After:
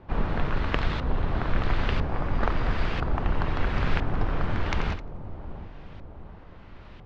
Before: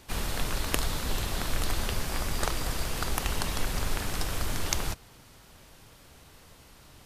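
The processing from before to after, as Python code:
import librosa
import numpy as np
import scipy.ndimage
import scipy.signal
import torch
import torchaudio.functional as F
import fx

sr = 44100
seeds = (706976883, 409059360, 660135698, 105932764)

p1 = fx.octave_divider(x, sr, octaves=1, level_db=1.0)
p2 = fx.rider(p1, sr, range_db=10, speed_s=0.5)
p3 = fx.air_absorb(p2, sr, metres=170.0)
p4 = p3 + fx.echo_split(p3, sr, split_hz=940.0, low_ms=713, high_ms=87, feedback_pct=52, wet_db=-12.5, dry=0)
p5 = fx.filter_lfo_lowpass(p4, sr, shape='saw_up', hz=1.0, low_hz=900.0, high_hz=2400.0, q=0.82)
p6 = fx.high_shelf(p5, sr, hz=2300.0, db=11.5)
y = p6 * 10.0 ** (3.5 / 20.0)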